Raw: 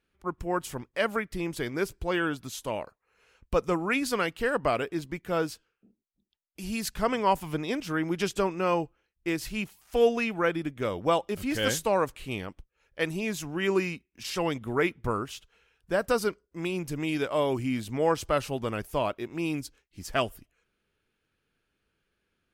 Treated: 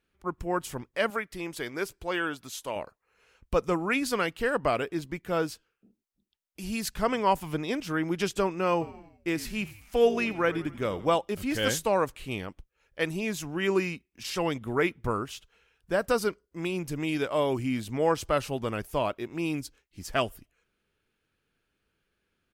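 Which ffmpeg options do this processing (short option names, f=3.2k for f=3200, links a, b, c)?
-filter_complex "[0:a]asettb=1/sr,asplit=3[a][b][c];[a]atrim=end=1.104[d];[b]atrim=start=1.1:end=2.76,asetpts=PTS-STARTPTS,afade=t=in:d=0.004:c=qsin,afade=t=out:st=1.656:d=0.004:c=qsin,lowshelf=f=270:g=-10.5[e];[c]atrim=start=2.756[f];[d][e]acrossfade=d=0.004:c1=hsin:c2=qsin[g];[g][f]acrossfade=d=0.004:c1=qsin:c2=hsin,asplit=3[h][i][j];[h]afade=t=out:st=8.8:d=0.02[k];[i]asplit=6[l][m][n][o][p][q];[m]adelay=86,afreqshift=-54,volume=-16.5dB[r];[n]adelay=172,afreqshift=-108,volume=-21.9dB[s];[o]adelay=258,afreqshift=-162,volume=-27.2dB[t];[p]adelay=344,afreqshift=-216,volume=-32.6dB[u];[q]adelay=430,afreqshift=-270,volume=-37.9dB[v];[l][r][s][t][u][v]amix=inputs=6:normalize=0,afade=t=in:st=8.8:d=0.02,afade=t=out:st=11.15:d=0.02[w];[j]afade=t=in:st=11.15:d=0.02[x];[k][w][x]amix=inputs=3:normalize=0"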